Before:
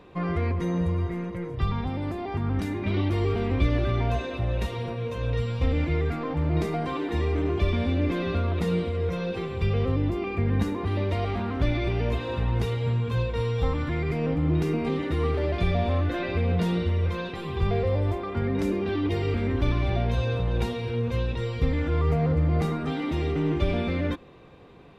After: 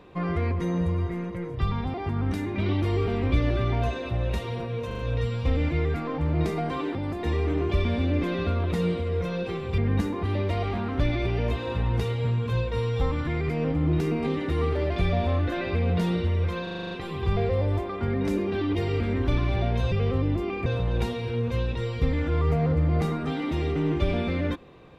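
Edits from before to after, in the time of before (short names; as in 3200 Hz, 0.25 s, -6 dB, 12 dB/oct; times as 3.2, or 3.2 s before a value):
1.94–2.22 move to 7.11
5.15 stutter 0.04 s, 4 plays
9.66–10.4 move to 20.26
17.25 stutter 0.04 s, 8 plays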